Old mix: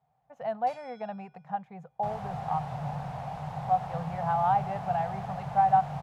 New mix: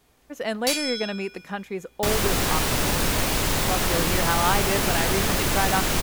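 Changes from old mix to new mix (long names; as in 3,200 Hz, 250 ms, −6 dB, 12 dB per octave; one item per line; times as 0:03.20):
speech −6.5 dB
master: remove pair of resonant band-passes 330 Hz, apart 2.4 octaves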